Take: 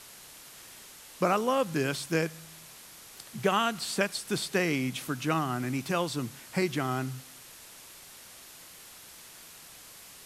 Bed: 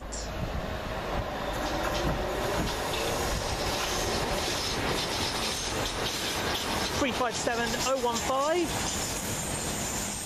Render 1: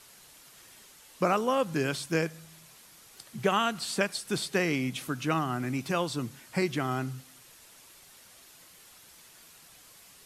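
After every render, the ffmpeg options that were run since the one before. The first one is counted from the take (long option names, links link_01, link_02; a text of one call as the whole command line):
ffmpeg -i in.wav -af "afftdn=noise_reduction=6:noise_floor=-50" out.wav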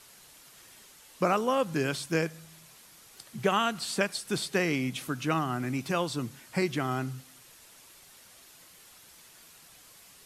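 ffmpeg -i in.wav -af anull out.wav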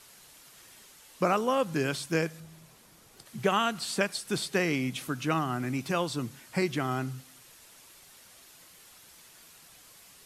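ffmpeg -i in.wav -filter_complex "[0:a]asettb=1/sr,asplit=3[link_01][link_02][link_03];[link_01]atrim=end=2.404[link_04];[link_02]atrim=start=2.4:end=3.26,asetpts=PTS-STARTPTS,afade=type=in:duration=0.004:curve=qsin,afade=type=out:start_time=0.856:duration=0.004:curve=qsin,tiltshelf=frequency=970:gain=5[link_05];[link_03]atrim=start=3.256[link_06];[link_04][link_05]acrossfade=duration=0.004:curve1=hsin:curve2=qsin[link_07];[link_07][link_06]acrossfade=duration=0.004:curve1=qsin:curve2=hsin" out.wav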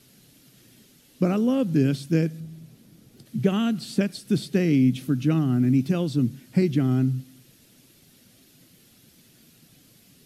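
ffmpeg -i in.wav -af "equalizer=frequency=125:width_type=o:width=1:gain=10,equalizer=frequency=250:width_type=o:width=1:gain=12,equalizer=frequency=1000:width_type=o:width=1:gain=-12,equalizer=frequency=2000:width_type=o:width=1:gain=-3,equalizer=frequency=8000:width_type=o:width=1:gain=-6" out.wav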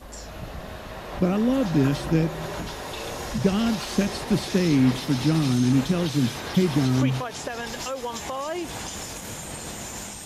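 ffmpeg -i in.wav -i bed.wav -filter_complex "[1:a]volume=-3.5dB[link_01];[0:a][link_01]amix=inputs=2:normalize=0" out.wav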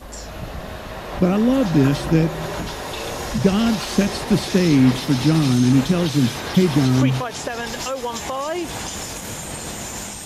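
ffmpeg -i in.wav -af "volume=5dB" out.wav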